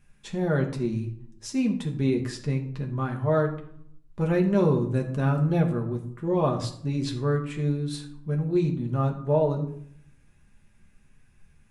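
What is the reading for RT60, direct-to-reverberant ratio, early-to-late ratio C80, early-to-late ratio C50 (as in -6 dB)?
0.65 s, 1.0 dB, 13.0 dB, 10.5 dB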